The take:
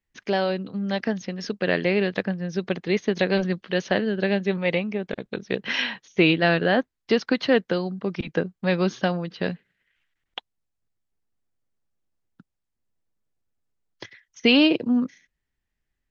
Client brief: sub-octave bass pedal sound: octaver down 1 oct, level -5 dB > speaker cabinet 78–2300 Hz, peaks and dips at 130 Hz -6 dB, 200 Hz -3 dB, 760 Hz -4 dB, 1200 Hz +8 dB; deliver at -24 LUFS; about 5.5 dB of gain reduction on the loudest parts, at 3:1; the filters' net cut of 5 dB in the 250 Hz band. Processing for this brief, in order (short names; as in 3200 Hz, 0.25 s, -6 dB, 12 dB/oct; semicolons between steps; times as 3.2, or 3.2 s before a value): bell 250 Hz -5 dB; compressor 3:1, threshold -22 dBFS; octaver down 1 oct, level -5 dB; speaker cabinet 78–2300 Hz, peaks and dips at 130 Hz -6 dB, 200 Hz -3 dB, 760 Hz -4 dB, 1200 Hz +8 dB; gain +5.5 dB